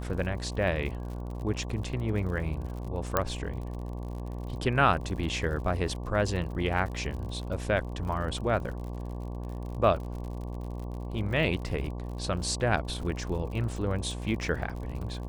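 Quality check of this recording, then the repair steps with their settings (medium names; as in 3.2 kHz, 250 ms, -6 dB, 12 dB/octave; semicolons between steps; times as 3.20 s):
buzz 60 Hz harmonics 19 -36 dBFS
crackle 59 per s -38 dBFS
3.17 s: pop -9 dBFS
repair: de-click; de-hum 60 Hz, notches 19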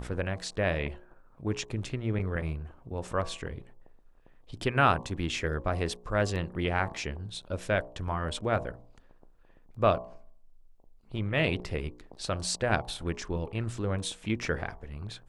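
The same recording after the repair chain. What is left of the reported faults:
nothing left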